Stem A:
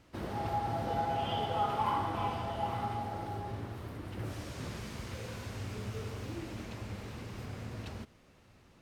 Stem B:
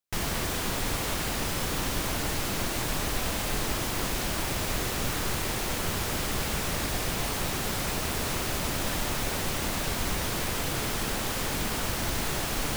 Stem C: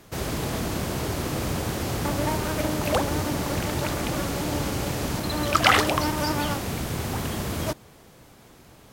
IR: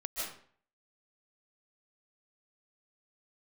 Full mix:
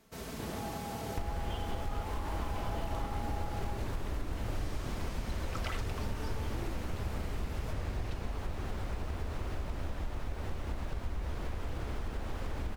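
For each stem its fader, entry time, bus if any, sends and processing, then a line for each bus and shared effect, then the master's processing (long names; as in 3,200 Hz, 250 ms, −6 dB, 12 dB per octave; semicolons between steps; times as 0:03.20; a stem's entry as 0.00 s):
−4.5 dB, 0.25 s, no bus, no send, compressor whose output falls as the input rises −37 dBFS
+0.5 dB, 1.05 s, bus A, no send, low-pass filter 1,000 Hz 6 dB per octave; low shelf with overshoot 100 Hz +8 dB, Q 1.5
−14.0 dB, 0.00 s, bus A, no send, comb filter 4.5 ms, depth 53%
bus A: 0.0 dB, downward compressor 4 to 1, threshold −34 dBFS, peak gain reduction 14.5 dB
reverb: not used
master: no processing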